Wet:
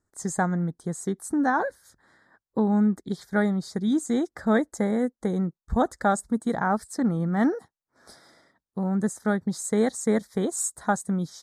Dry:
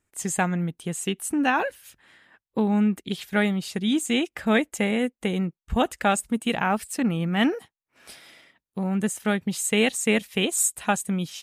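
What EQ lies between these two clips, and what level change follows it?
Butterworth band-stop 2700 Hz, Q 1; air absorption 51 m; 0.0 dB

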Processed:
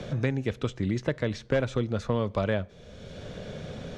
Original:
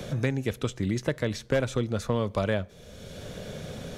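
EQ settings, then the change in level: air absorption 97 m; 0.0 dB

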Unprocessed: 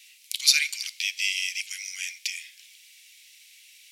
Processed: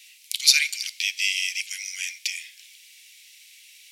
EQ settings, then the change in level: HPF 1300 Hz 24 dB/oct; +2.5 dB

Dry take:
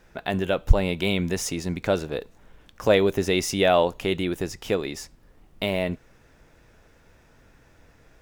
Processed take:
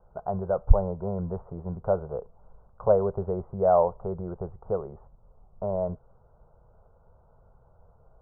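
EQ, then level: steep low-pass 1600 Hz 96 dB/oct; fixed phaser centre 700 Hz, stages 4; 0.0 dB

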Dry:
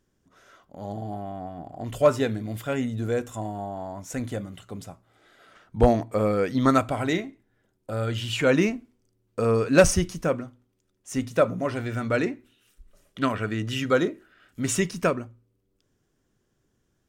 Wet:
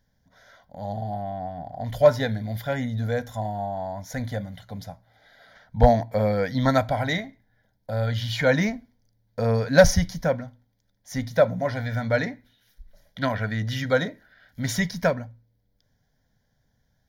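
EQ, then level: fixed phaser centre 1800 Hz, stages 8; +5.0 dB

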